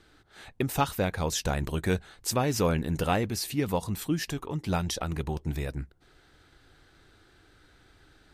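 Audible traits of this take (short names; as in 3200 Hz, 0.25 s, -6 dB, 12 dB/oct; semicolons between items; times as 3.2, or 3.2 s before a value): noise floor -61 dBFS; spectral tilt -5.0 dB/oct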